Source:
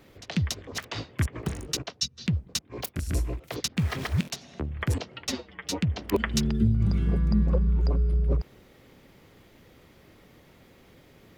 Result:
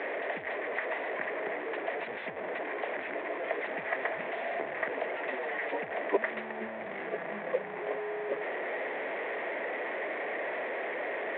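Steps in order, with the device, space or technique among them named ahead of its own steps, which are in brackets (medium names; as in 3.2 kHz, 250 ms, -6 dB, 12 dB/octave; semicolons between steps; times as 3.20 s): digital answering machine (band-pass 350–3000 Hz; one-bit delta coder 16 kbps, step -30.5 dBFS; cabinet simulation 410–3400 Hz, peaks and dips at 440 Hz +4 dB, 650 Hz +9 dB, 1.3 kHz -7 dB, 1.9 kHz +8 dB, 2.9 kHz -8 dB)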